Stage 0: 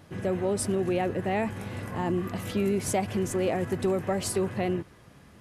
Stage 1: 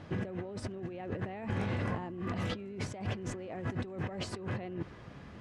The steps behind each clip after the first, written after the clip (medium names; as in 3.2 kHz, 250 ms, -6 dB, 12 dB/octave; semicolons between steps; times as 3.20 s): compressor with a negative ratio -36 dBFS, ratio -1; distance through air 130 m; trim -2 dB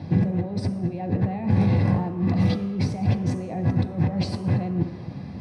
reverberation RT60 1.2 s, pre-delay 3 ms, DRR 5.5 dB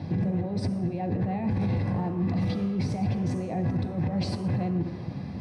peak limiter -20 dBFS, peak gain reduction 11 dB